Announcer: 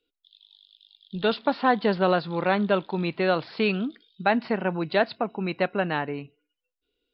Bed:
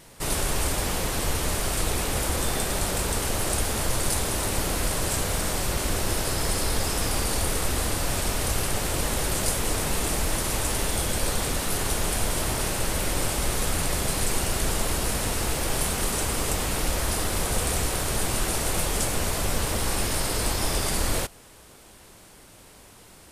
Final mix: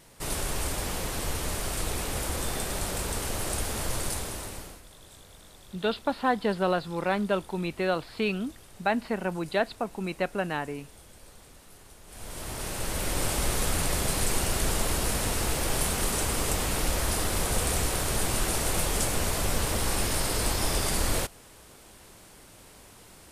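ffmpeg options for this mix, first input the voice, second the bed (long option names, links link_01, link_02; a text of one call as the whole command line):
ffmpeg -i stem1.wav -i stem2.wav -filter_complex "[0:a]adelay=4600,volume=-4dB[link_01];[1:a]volume=19dB,afade=type=out:start_time=3.98:duration=0.84:silence=0.0944061,afade=type=in:start_time=12.06:duration=1.28:silence=0.0630957[link_02];[link_01][link_02]amix=inputs=2:normalize=0" out.wav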